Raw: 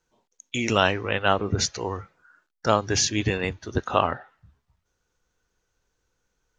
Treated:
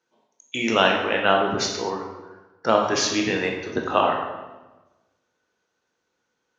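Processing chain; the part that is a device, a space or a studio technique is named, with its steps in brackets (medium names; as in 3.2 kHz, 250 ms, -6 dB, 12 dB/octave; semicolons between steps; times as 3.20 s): supermarket ceiling speaker (band-pass 220–5200 Hz; reverberation RT60 1.1 s, pre-delay 16 ms, DRR 1.5 dB); 1.90–2.83 s: treble shelf 7 kHz -10.5 dB; trim +1 dB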